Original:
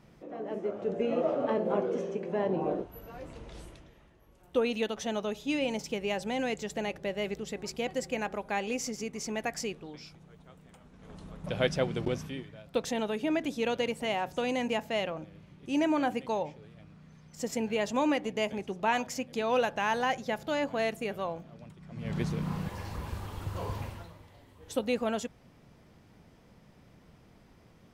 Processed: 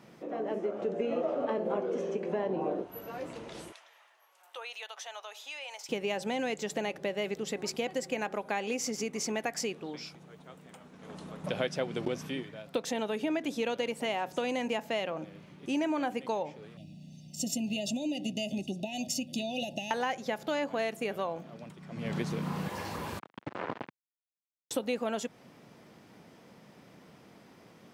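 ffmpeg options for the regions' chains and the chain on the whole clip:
-filter_complex "[0:a]asettb=1/sr,asplit=3[a][b][c];[a]atrim=end=3.724[d];[b]atrim=start=3.72:end=5.89,asetpts=PTS-STARTPTS,afade=t=in:d=0.004:c=qsin,afade=t=out:st=2.166:d=0.004:c=qsin,highpass=f=760:w=0.5412,highpass=f=760:w=1.3066,acompressor=threshold=-52dB:ratio=2:attack=3.2:release=140:knee=1:detection=peak[e];[c]atrim=start=5.886[f];[d][e]acrossfade=d=0.004:c1=hsin:c2=qsin[g];[g][f]acrossfade=d=0.004:c1=qsin:c2=hsin,asettb=1/sr,asplit=3[h][i][j];[h]atrim=end=16.774[k];[i]atrim=start=16.77:end=19.91,asetpts=PTS-STARTPTS,afade=t=in:d=0.004:c=qsin,afade=t=out:st=3.136:d=0.004:c=qsin,aecho=1:1:1.1:0.95,atrim=end_sample=138474,acompressor=threshold=-28dB:ratio=10:attack=3.2:release=140:knee=1:detection=peak,asuperstop=centerf=1300:order=8:qfactor=0.64[l];[j]atrim=start=19.906[m];[k][l]acrossfade=d=0.004:c1=hsin:c2=qsin[n];[n][m]acrossfade=d=0.004:c1=qsin:c2=hsin,asettb=1/sr,asplit=3[o][p][q];[o]atrim=end=23.194[r];[p]atrim=start=23.19:end=24.71,asetpts=PTS-STARTPTS,afade=t=in:d=0.004:c=qsin,afade=t=out:st=1.516:d=0.004:c=qsin,aeval=exprs='sgn(val(0))*max(abs(val(0))-0.00316,0)':c=same,acrusher=bits=4:mix=0:aa=0.5,highpass=130,lowpass=2.4k[s];[q]atrim=start=24.706[t];[r][s]acrossfade=d=0.004:c1=hsin:c2=qsin[u];[u][t]acrossfade=d=0.004:c1=qsin:c2=hsin,highpass=190,acompressor=threshold=-36dB:ratio=3,volume=5.5dB"

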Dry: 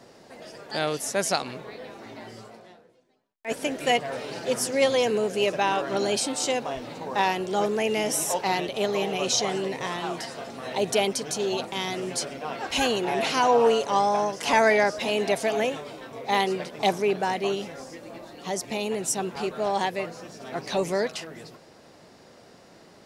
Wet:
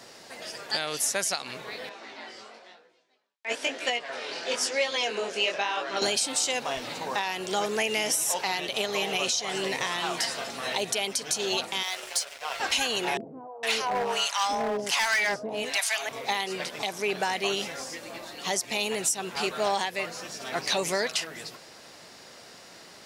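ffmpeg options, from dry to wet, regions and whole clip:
-filter_complex "[0:a]asettb=1/sr,asplit=3[a][b][c];[a]atrim=end=1.894[d];[b]atrim=start=1.89:end=6.02,asetpts=PTS-STARTPTS,afade=t=in:d=0.004:c=qsin,afade=t=out:st=4.126:d=0.004:c=qsin,highpass=280,lowpass=5.5k,flanger=delay=16:depth=7.7:speed=1[e];[c]atrim=start=6.016[f];[d][e]acrossfade=d=0.004:c1=hsin:c2=qsin[g];[g][f]acrossfade=d=0.004:c1=qsin:c2=hsin,asettb=1/sr,asplit=3[h][i][j];[h]atrim=end=11.834[k];[i]atrim=start=11.83:end=12.6,asetpts=PTS-STARTPTS,afade=t=in:d=0.004:c=qsin,afade=t=out:st=0.766:d=0.004:c=qsin,highpass=f=490:w=0.5412,highpass=f=490:w=1.3066,aeval=exprs='sgn(val(0))*max(abs(val(0))-0.0075,0)':c=same[l];[j]atrim=start=12.596[m];[k][l]acrossfade=d=0.004:c1=hsin:c2=qsin[n];[n][m]acrossfade=d=0.004:c1=qsin:c2=hsin,asettb=1/sr,asplit=3[o][p][q];[o]atrim=end=13.174[r];[p]atrim=start=13.17:end=16.09,asetpts=PTS-STARTPTS,afade=t=in:d=0.004:c=qsin,afade=t=out:st=2.916:d=0.004:c=qsin,acrossover=split=500[s][t];[t]adelay=460[u];[s][u]amix=inputs=2:normalize=0,atrim=end_sample=128772,acrossover=split=810[v][w];[v]aeval=exprs='val(0)*(1-1/2+1/2*cos(2*PI*1.3*n/s))':c=same[x];[w]aeval=exprs='val(0)*(1-1/2-1/2*cos(2*PI*1.3*n/s))':c=same[y];[x][y]amix=inputs=2:normalize=0,asoftclip=type=hard:threshold=-23.5dB[z];[q]atrim=start=16.086[aa];[r][z]acrossfade=d=0.004:c1=hsin:c2=qsin[ab];[ab][aa]acrossfade=d=0.004:c1=qsin:c2=hsin,tiltshelf=f=970:g=-7,acompressor=threshold=-23dB:ratio=6,alimiter=limit=-17.5dB:level=0:latency=1:release=397,volume=3dB"

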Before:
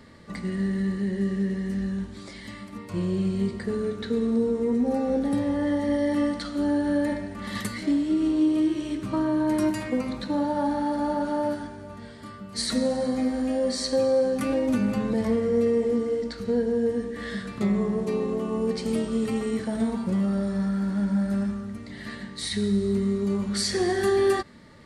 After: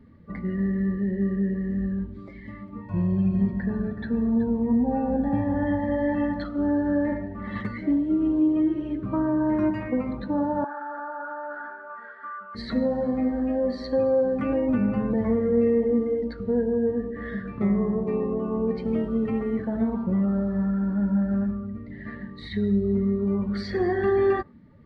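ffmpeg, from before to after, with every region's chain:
-filter_complex "[0:a]asettb=1/sr,asplit=3[a][b][c];[a]atrim=end=2.804[d];[b]atrim=start=2.8:end=6.44,asetpts=PTS-STARTPTS,afade=t=in:d=0.004:c=qsin,afade=t=out:st=3.636:d=0.004:c=qsin,aecho=1:1:1.2:0.61,atrim=end_sample=160524,aecho=1:1:375:0.316,atrim=end_sample=160524[e];[c]atrim=start=6.436[f];[d][e]acrossfade=d=0.004:c1=hsin:c2=qsin[g];[g][f]acrossfade=d=0.004:c1=qsin:c2=hsin,asettb=1/sr,asplit=3[h][i][j];[h]atrim=end=10.644[k];[i]atrim=start=10.64:end=12.55,asetpts=PTS-STARTPTS,afade=t=in:d=0.004:c=qsin,afade=t=out:st=1.906:d=0.004:c=qsin,highpass=560,lowpass=4.3k,equalizer=f=1.4k:w=1.6:g=15,acompressor=threshold=-31dB:ratio=5:attack=3.2:release=140:knee=1:detection=peak[l];[j]atrim=start=12.546[m];[k][l]acrossfade=d=0.004:c1=hsin:c2=qsin[n];[n][m]acrossfade=d=0.004:c1=qsin:c2=hsin,asettb=1/sr,asplit=3[o][p][q];[o]atrim=end=15.404[r];[p]atrim=start=15.4:end=16.34,asetpts=PTS-STARTPTS,afade=t=in:d=0.004:c=qsin,afade=t=out:st=0.936:d=0.004:c=qsin,highshelf=f=6.8k:g=8.5,aecho=1:1:3.8:0.31,atrim=end_sample=41454[s];[q]atrim=start=16.336[t];[r][s]acrossfade=d=0.004:c1=hsin:c2=qsin[u];[u][t]acrossfade=d=0.004:c1=qsin:c2=hsin,lowpass=2.4k,afftdn=nr=13:nf=-43,lowshelf=f=100:g=6"

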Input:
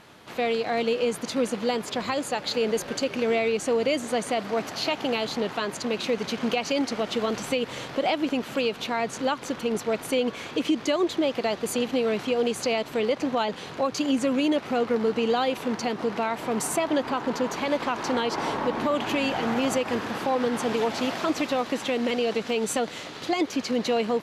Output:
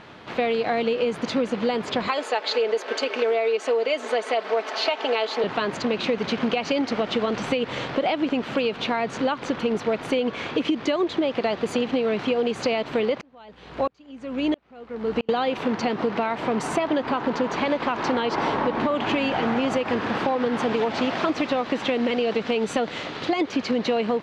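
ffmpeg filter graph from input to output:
-filter_complex "[0:a]asettb=1/sr,asplit=3[a][b][c];[a]atrim=end=2.084[d];[b]atrim=start=2.08:end=5.44,asetpts=PTS-STARTPTS,afade=t=in:d=0.004:c=qsin,afade=t=out:st=3.356:d=0.004:c=qsin,highpass=f=370:w=0.5412,highpass=f=370:w=1.3066,aecho=1:1:4.6:0.5,atrim=end_sample=148176[e];[c]atrim=start=5.436[f];[d][e]acrossfade=d=0.004:c1=hsin:c2=qsin[g];[g][f]acrossfade=d=0.004:c1=qsin:c2=hsin,asettb=1/sr,asplit=3[h][i][j];[h]atrim=end=13.214[k];[i]atrim=start=13.21:end=15.29,asetpts=PTS-STARTPTS,afade=t=in:d=0.004:c=qsin,afade=t=out:st=2.076:d=0.004:c=qsin,acrusher=bits=7:mix=0:aa=0.5,aeval=exprs='val(0)+0.00501*(sin(2*PI*60*n/s)+sin(2*PI*2*60*n/s)/2+sin(2*PI*3*60*n/s)/3+sin(2*PI*4*60*n/s)/4+sin(2*PI*5*60*n/s)/5)':c=same,aeval=exprs='val(0)*pow(10,-39*if(lt(mod(-1.5*n/s,1),2*abs(-1.5)/1000),1-mod(-1.5*n/s,1)/(2*abs(-1.5)/1000),(mod(-1.5*n/s,1)-2*abs(-1.5)/1000)/(1-2*abs(-1.5)/1000))/20)':c=same[l];[j]atrim=start=15.286[m];[k][l]acrossfade=d=0.004:c1=hsin:c2=qsin[n];[n][m]acrossfade=d=0.004:c1=qsin:c2=hsin,lowpass=3.7k,acompressor=threshold=-26dB:ratio=6,volume=6.5dB"

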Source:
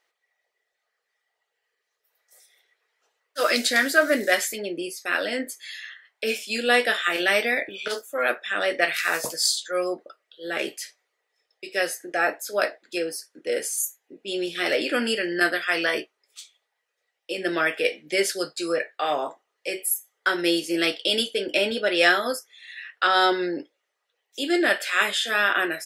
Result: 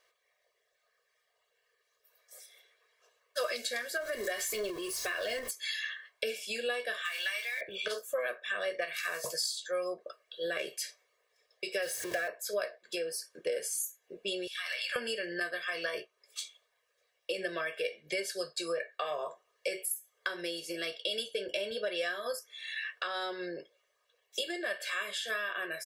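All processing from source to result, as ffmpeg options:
-filter_complex "[0:a]asettb=1/sr,asplit=3[a][b][c];[a]atrim=end=3.974[d];[b]atrim=start=3.97:end=5.51,asetpts=PTS-STARTPTS,afade=t=in:d=0.004:c=qsin,afade=t=out:st=1.536:d=0.004:c=qsin,aeval=exprs='val(0)+0.5*0.0251*sgn(val(0))':c=same,aecho=1:1:2.8:0.36,atrim=end_sample=67914,acompressor=threshold=-24dB:ratio=2.5:attack=3.2:release=140:knee=1:detection=peak[e];[c]atrim=start=5.506[f];[d][e]acrossfade=d=0.004:c1=hsin:c2=qsin[g];[g][f]acrossfade=d=0.004:c1=qsin:c2=hsin,asettb=1/sr,asplit=3[h][i][j];[h]atrim=end=7.054[k];[i]atrim=start=7.05:end=7.61,asetpts=PTS-STARTPTS,afade=t=in:d=0.004:c=qsin,afade=t=out:st=0.556:d=0.004:c=qsin,aeval=exprs='val(0)+0.5*0.0237*sgn(val(0))':c=same,highpass=1.5k[l];[j]atrim=start=7.606[m];[k][l]acrossfade=d=0.004:c1=hsin:c2=qsin[n];[n][m]acrossfade=d=0.004:c1=qsin:c2=hsin,asettb=1/sr,asplit=3[o][p][q];[o]atrim=end=11.824[r];[p]atrim=start=11.82:end=12.28,asetpts=PTS-STARTPTS,afade=t=in:d=0.004:c=qsin,afade=t=out:st=0.456:d=0.004:c=qsin,aeval=exprs='val(0)+0.5*0.0376*sgn(val(0))':c=same,highpass=89,equalizer=f=1.1k:t=o:w=0.31:g=-10.5[s];[q]atrim=start=12.276[t];[r][s]acrossfade=d=0.004:c1=hsin:c2=qsin[u];[u][t]acrossfade=d=0.004:c1=qsin:c2=hsin,asettb=1/sr,asplit=3[v][w][x];[v]atrim=end=14.474[y];[w]atrim=start=14.47:end=14.96,asetpts=PTS-STARTPTS,afade=t=in:d=0.004:c=qsin,afade=t=out:st=0.486:d=0.004:c=qsin,highpass=f=1k:w=0.5412,highpass=f=1k:w=1.3066,acompressor=threshold=-33dB:ratio=3:attack=3.2:release=140:knee=1:detection=peak[z];[x]atrim=start=14.956[aa];[y][z]acrossfade=d=0.004:c1=hsin:c2=qsin[ab];[ab][aa]acrossfade=d=0.004:c1=qsin:c2=hsin,acompressor=threshold=-35dB:ratio=12,aecho=1:1:1.8:0.98"

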